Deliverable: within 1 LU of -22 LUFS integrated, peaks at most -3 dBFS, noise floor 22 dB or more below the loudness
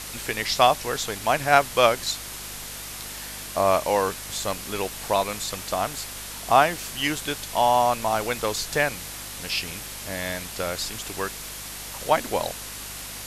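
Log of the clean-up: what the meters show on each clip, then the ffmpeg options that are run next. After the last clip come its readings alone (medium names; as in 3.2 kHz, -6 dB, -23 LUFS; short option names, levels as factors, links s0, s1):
hum 50 Hz; highest harmonic 250 Hz; hum level -44 dBFS; noise floor -37 dBFS; noise floor target -47 dBFS; loudness -25.0 LUFS; peak level -4.0 dBFS; loudness target -22.0 LUFS
-> -af "bandreject=f=50:t=h:w=4,bandreject=f=100:t=h:w=4,bandreject=f=150:t=h:w=4,bandreject=f=200:t=h:w=4,bandreject=f=250:t=h:w=4"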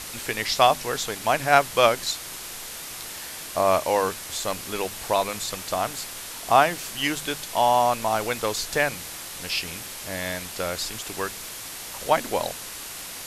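hum not found; noise floor -37 dBFS; noise floor target -47 dBFS
-> -af "afftdn=nr=10:nf=-37"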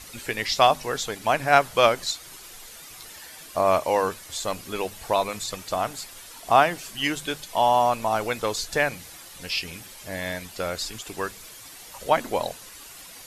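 noise floor -44 dBFS; noise floor target -47 dBFS
-> -af "afftdn=nr=6:nf=-44"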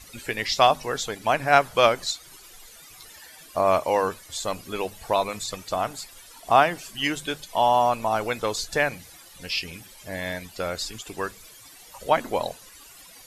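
noise floor -48 dBFS; loudness -24.5 LUFS; peak level -3.5 dBFS; loudness target -22.0 LUFS
-> -af "volume=1.33,alimiter=limit=0.708:level=0:latency=1"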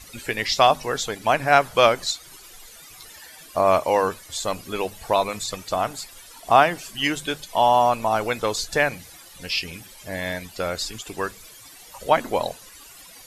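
loudness -22.5 LUFS; peak level -3.0 dBFS; noise floor -46 dBFS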